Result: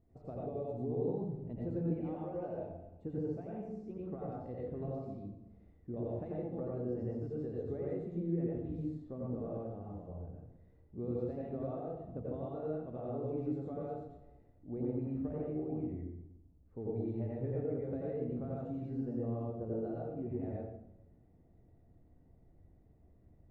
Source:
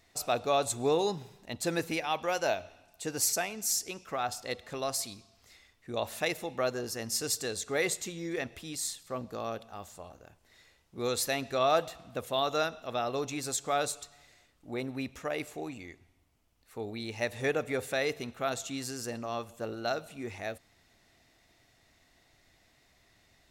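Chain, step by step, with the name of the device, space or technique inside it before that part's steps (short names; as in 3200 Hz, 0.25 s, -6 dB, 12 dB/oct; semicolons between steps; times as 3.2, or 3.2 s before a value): television next door (compressor 6:1, threshold -34 dBFS, peak gain reduction 12.5 dB; LPF 330 Hz 12 dB/oct; reverb RT60 0.80 s, pre-delay 80 ms, DRR -4.5 dB); 0.46–1.09 bell 1400 Hz -12 dB 0.57 oct; gain +1 dB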